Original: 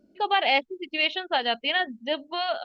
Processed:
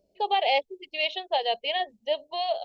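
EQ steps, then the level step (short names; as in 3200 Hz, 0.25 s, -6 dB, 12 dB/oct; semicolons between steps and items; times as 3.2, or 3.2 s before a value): bell 330 Hz -15 dB 0.21 oct; dynamic EQ 420 Hz, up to +4 dB, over -39 dBFS, Q 1.1; fixed phaser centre 590 Hz, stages 4; 0.0 dB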